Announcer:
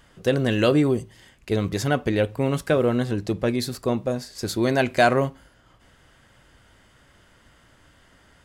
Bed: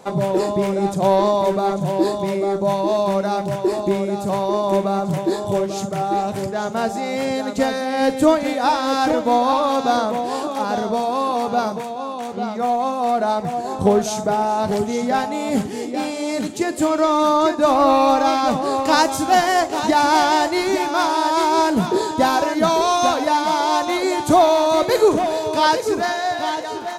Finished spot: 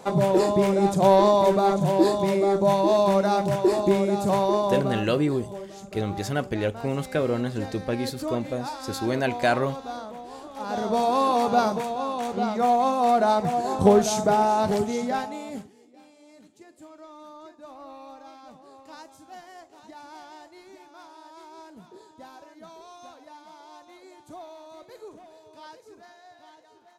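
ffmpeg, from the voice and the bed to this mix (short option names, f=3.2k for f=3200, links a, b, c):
-filter_complex "[0:a]adelay=4450,volume=-4.5dB[a];[1:a]volume=15dB,afade=t=out:st=4.41:d=0.74:silence=0.158489,afade=t=in:st=10.53:d=0.53:silence=0.158489,afade=t=out:st=14.42:d=1.32:silence=0.0398107[b];[a][b]amix=inputs=2:normalize=0"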